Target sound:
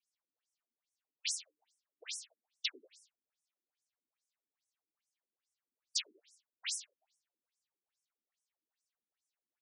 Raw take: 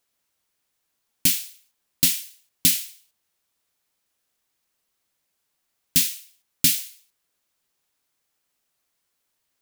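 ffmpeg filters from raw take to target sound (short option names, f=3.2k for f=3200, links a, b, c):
-filter_complex "[0:a]afftfilt=real='hypot(re,im)*cos(2*PI*random(0))':imag='hypot(re,im)*sin(2*PI*random(1))':win_size=512:overlap=0.75,asplit=5[a][b][c][d][e];[b]adelay=92,afreqshift=150,volume=-18.5dB[f];[c]adelay=184,afreqshift=300,volume=-25.4dB[g];[d]adelay=276,afreqshift=450,volume=-32.4dB[h];[e]adelay=368,afreqshift=600,volume=-39.3dB[i];[a][f][g][h][i]amix=inputs=5:normalize=0,afftfilt=real='re*between(b*sr/1024,270*pow(7700/270,0.5+0.5*sin(2*PI*2.4*pts/sr))/1.41,270*pow(7700/270,0.5+0.5*sin(2*PI*2.4*pts/sr))*1.41)':imag='im*between(b*sr/1024,270*pow(7700/270,0.5+0.5*sin(2*PI*2.4*pts/sr))/1.41,270*pow(7700/270,0.5+0.5*sin(2*PI*2.4*pts/sr))*1.41)':win_size=1024:overlap=0.75,volume=-2dB"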